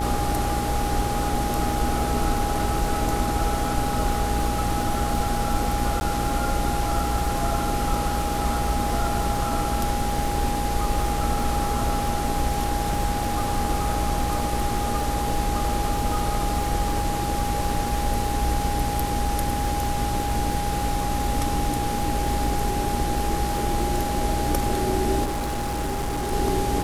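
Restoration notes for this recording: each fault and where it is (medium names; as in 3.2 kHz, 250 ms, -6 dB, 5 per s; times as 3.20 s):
buzz 60 Hz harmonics 34 -29 dBFS
crackle 150 per s -32 dBFS
whine 820 Hz -27 dBFS
6.00–6.01 s: dropout 10 ms
25.24–26.33 s: clipped -23.5 dBFS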